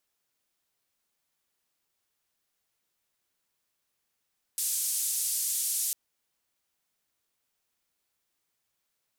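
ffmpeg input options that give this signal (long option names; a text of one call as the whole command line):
ffmpeg -f lavfi -i "anoisesrc=color=white:duration=1.35:sample_rate=44100:seed=1,highpass=frequency=7600,lowpass=frequency=11000,volume=-17.4dB" out.wav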